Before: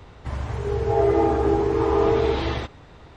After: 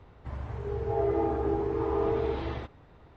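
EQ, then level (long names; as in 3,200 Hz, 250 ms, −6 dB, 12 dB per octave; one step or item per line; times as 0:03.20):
low-pass filter 1,800 Hz 6 dB per octave
−8.0 dB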